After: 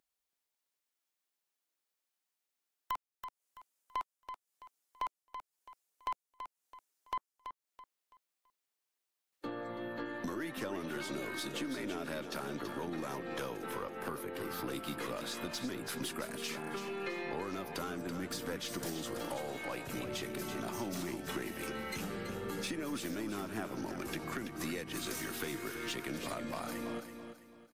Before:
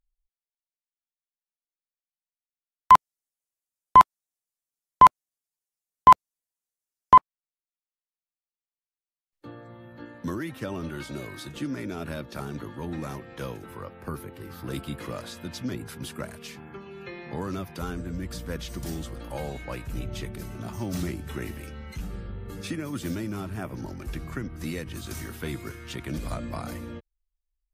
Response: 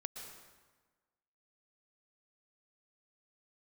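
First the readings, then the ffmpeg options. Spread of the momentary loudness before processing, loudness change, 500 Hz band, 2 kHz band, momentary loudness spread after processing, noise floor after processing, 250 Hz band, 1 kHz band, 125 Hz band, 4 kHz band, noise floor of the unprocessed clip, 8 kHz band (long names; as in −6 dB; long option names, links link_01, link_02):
22 LU, −14.0 dB, −2.5 dB, −2.5 dB, 10 LU, below −85 dBFS, −5.0 dB, −20.0 dB, −12.5 dB, −1.0 dB, below −85 dBFS, −0.5 dB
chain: -filter_complex "[0:a]highpass=260,acompressor=threshold=-43dB:ratio=8,aeval=exprs='(tanh(70.8*val(0)+0.25)-tanh(0.25))/70.8':channel_layout=same,asplit=2[link_01][link_02];[link_02]aecho=0:1:331|662|993|1324:0.376|0.124|0.0409|0.0135[link_03];[link_01][link_03]amix=inputs=2:normalize=0,volume=8dB"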